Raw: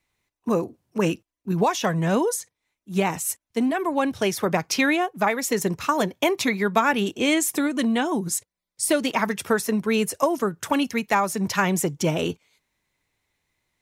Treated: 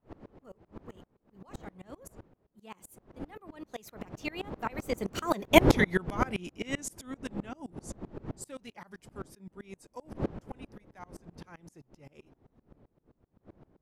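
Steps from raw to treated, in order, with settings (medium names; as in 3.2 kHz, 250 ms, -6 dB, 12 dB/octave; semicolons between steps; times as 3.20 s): wind noise 370 Hz -22 dBFS; Doppler pass-by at 5.58 s, 39 m/s, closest 7.4 m; sawtooth tremolo in dB swelling 7.7 Hz, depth 27 dB; trim +7 dB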